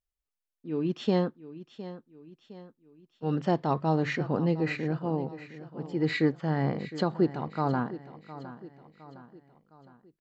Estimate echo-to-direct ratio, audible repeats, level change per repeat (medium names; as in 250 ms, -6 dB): -14.0 dB, 4, -6.5 dB